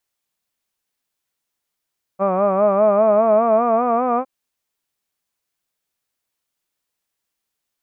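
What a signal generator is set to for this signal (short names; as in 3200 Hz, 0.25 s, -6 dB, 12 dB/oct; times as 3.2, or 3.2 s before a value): formant-synthesis vowel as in hud, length 2.06 s, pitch 188 Hz, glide +5 st, vibrato 5 Hz, vibrato depth 0.85 st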